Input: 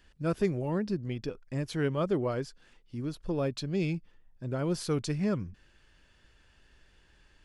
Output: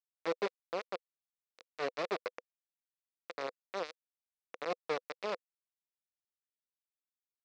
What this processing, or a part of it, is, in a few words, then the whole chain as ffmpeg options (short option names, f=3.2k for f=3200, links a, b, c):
hand-held game console: -af "acrusher=bits=3:mix=0:aa=0.000001,highpass=440,equalizer=f=500:t=q:w=4:g=10,equalizer=f=870:t=q:w=4:g=-6,equalizer=f=1.6k:t=q:w=4:g=-4,equalizer=f=3.1k:t=q:w=4:g=-8,lowpass=f=4.5k:w=0.5412,lowpass=f=4.5k:w=1.3066,volume=-6dB"